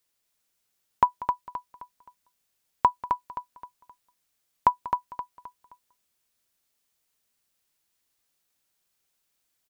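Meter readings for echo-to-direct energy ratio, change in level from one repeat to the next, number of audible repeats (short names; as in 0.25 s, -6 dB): -5.5 dB, -9.0 dB, 4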